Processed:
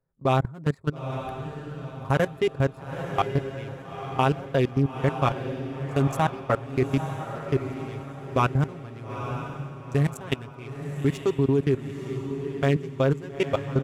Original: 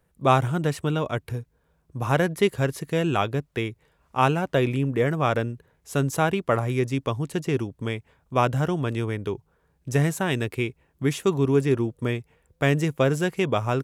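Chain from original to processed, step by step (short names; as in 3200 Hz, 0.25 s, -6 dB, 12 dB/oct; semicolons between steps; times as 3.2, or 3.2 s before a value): Wiener smoothing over 15 samples; comb 7.4 ms, depth 64%; level quantiser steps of 20 dB; diffused feedback echo 0.906 s, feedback 41%, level -8 dB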